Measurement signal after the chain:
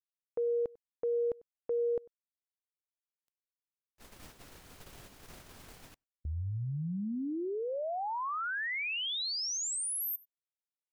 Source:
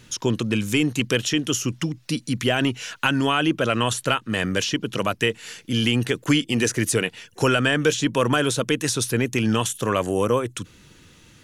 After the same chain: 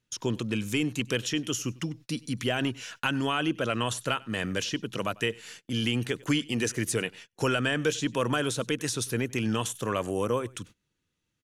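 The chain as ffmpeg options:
-af "aecho=1:1:97:0.0668,agate=range=-23dB:threshold=-39dB:ratio=16:detection=peak,volume=-7dB"

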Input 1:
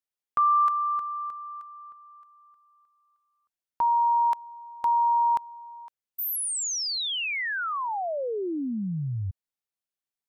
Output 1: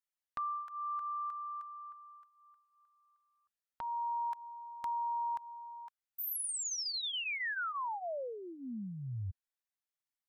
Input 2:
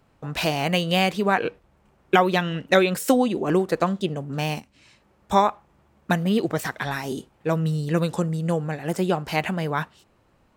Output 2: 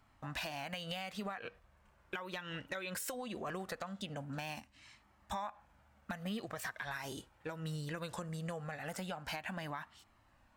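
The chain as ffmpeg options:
-af "equalizer=f=160:t=o:w=0.67:g=-9,equalizer=f=400:t=o:w=0.67:g=-11,equalizer=f=1.6k:t=o:w=0.67:g=4,acompressor=threshold=-29dB:ratio=12:attack=1.1:release=237:knee=6:detection=peak,flanger=delay=0.9:depth=1.3:regen=-55:speed=0.2:shape=triangular,volume=-1dB"

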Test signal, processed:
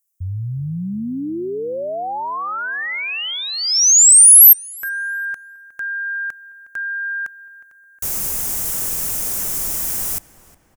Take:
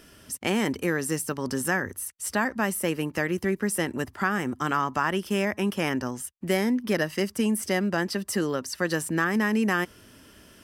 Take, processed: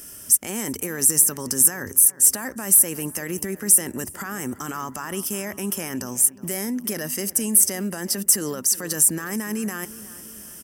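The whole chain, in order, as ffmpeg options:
-filter_complex "[0:a]alimiter=limit=-22.5dB:level=0:latency=1:release=18,asplit=2[a][b];[b]adelay=362,lowpass=f=2.8k:p=1,volume=-17dB,asplit=2[c][d];[d]adelay=362,lowpass=f=2.8k:p=1,volume=0.52,asplit=2[e][f];[f]adelay=362,lowpass=f=2.8k:p=1,volume=0.52,asplit=2[g][h];[h]adelay=362,lowpass=f=2.8k:p=1,volume=0.52,asplit=2[i][j];[j]adelay=362,lowpass=f=2.8k:p=1,volume=0.52[k];[a][c][e][g][i][k]amix=inputs=6:normalize=0,aexciter=amount=6.9:drive=5.7:freq=5.8k,volume=1.5dB"

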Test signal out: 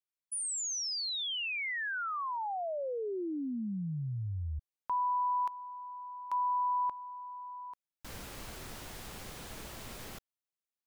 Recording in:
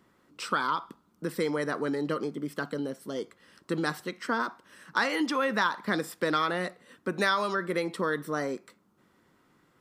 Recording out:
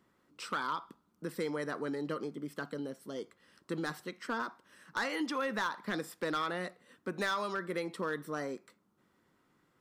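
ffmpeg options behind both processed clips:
-af "asoftclip=type=hard:threshold=-20dB,volume=-6.5dB"

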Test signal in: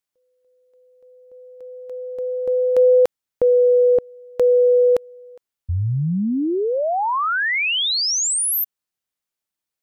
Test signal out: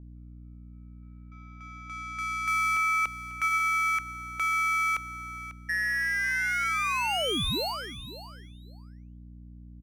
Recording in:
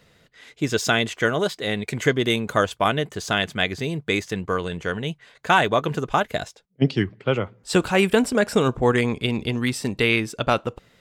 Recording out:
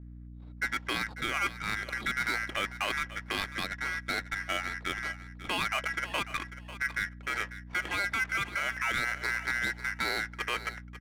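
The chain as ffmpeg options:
-filter_complex "[0:a]agate=range=-10dB:threshold=-46dB:ratio=16:release=84:detection=rms,lowpass=f=2.7k:w=0.5412,lowpass=f=2.7k:w=1.3066,aeval=exprs='val(0)*sin(2*PI*1800*n/s)':c=same,aeval=exprs='val(0)+0.01*(sin(2*PI*60*n/s)+sin(2*PI*2*60*n/s)/2+sin(2*PI*3*60*n/s)/3+sin(2*PI*4*60*n/s)/4+sin(2*PI*5*60*n/s)/5)':c=same,adynamicsmooth=sensitivity=5.5:basefreq=1.2k,alimiter=limit=-16dB:level=0:latency=1:release=11,asplit=2[a][b];[b]aecho=0:1:545|1090:0.2|0.0299[c];[a][c]amix=inputs=2:normalize=0,volume=-4.5dB"

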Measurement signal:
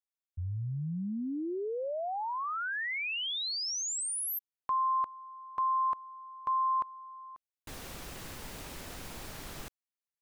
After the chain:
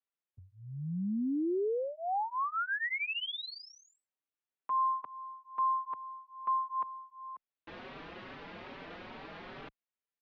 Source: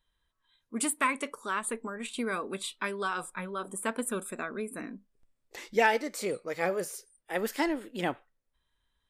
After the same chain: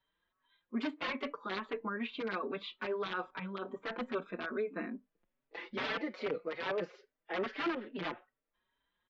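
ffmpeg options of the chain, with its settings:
-filter_complex "[0:a]aresample=16000,aeval=exprs='(mod(15.8*val(0)+1,2)-1)/15.8':c=same,aresample=44100,lowpass=f=4.7k:w=0.5412,lowpass=f=4.7k:w=1.3066,acrossover=split=160 3500:gain=0.158 1 0.0708[a][b][c];[a][b][c]amix=inputs=3:normalize=0,alimiter=level_in=5dB:limit=-24dB:level=0:latency=1:release=18,volume=-5dB,asplit=2[d][e];[e]adelay=4.8,afreqshift=2.4[f];[d][f]amix=inputs=2:normalize=1,volume=4dB"

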